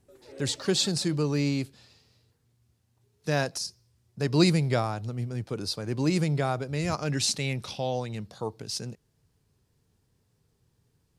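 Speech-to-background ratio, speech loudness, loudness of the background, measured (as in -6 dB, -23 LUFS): 19.5 dB, -28.5 LUFS, -48.0 LUFS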